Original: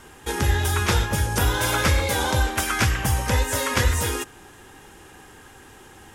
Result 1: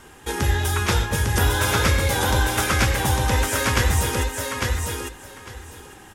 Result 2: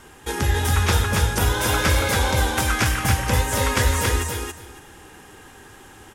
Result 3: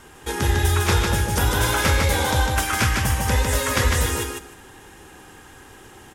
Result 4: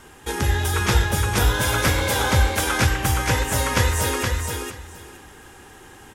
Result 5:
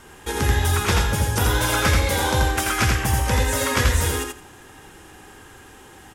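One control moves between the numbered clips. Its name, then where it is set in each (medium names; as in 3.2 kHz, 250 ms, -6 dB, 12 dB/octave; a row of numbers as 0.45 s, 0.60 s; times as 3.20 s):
feedback delay, time: 852 ms, 279 ms, 152 ms, 469 ms, 84 ms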